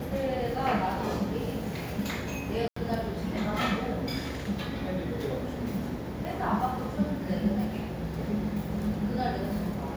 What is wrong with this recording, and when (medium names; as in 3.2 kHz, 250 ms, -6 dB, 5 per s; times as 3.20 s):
2.68–2.76 s: dropout 84 ms
6.25 s: pop